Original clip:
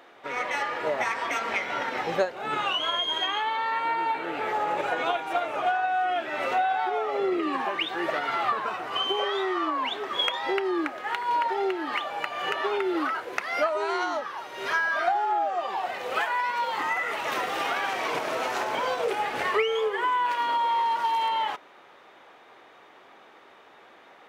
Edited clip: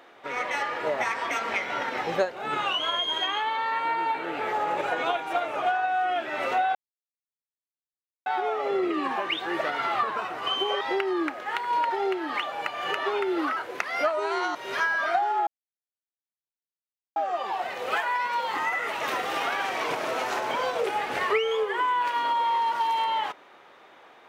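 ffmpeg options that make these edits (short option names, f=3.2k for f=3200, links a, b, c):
-filter_complex "[0:a]asplit=5[a][b][c][d][e];[a]atrim=end=6.75,asetpts=PTS-STARTPTS,afade=t=out:st=6.746:d=0.004:c=hsin,apad=pad_dur=1.51[f];[b]atrim=start=6.75:end=9.302,asetpts=PTS-STARTPTS,afade=t=in:d=0.004:c=hsin[g];[c]atrim=start=10.388:end=14.132[h];[d]atrim=start=14.478:end=15.4,asetpts=PTS-STARTPTS,afade=t=out:st=0.918:d=0.004:c=hsin,apad=pad_dur=1.69[i];[e]atrim=start=15.4,asetpts=PTS-STARTPTS,afade=t=in:d=0.004:c=hsin[j];[f][g]concat=n=2:v=0:a=1[k];[k][h]acrossfade=d=0.004:c1=hsin:c2=hsin[l];[i][j]concat=n=2:v=0:a=1[m];[l][m]acrossfade=d=0.004:c1=hsin:c2=hsin"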